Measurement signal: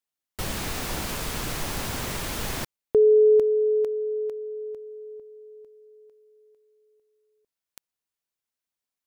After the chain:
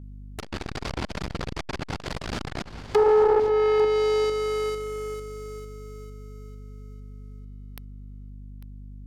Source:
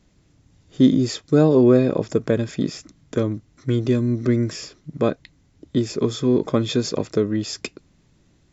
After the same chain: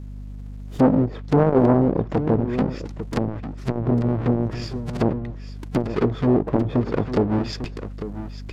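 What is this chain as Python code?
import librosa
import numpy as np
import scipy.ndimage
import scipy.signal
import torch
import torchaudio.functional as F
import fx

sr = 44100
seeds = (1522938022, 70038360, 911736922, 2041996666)

y = fx.halfwave_hold(x, sr)
y = fx.env_lowpass_down(y, sr, base_hz=560.0, full_db=-13.0)
y = fx.dynamic_eq(y, sr, hz=4700.0, q=5.7, threshold_db=-54.0, ratio=4.0, max_db=5)
y = y + 10.0 ** (-13.5 / 20.0) * np.pad(y, (int(848 * sr / 1000.0), 0))[:len(y)]
y = fx.add_hum(y, sr, base_hz=50, snr_db=16)
y = fx.transformer_sat(y, sr, knee_hz=490.0)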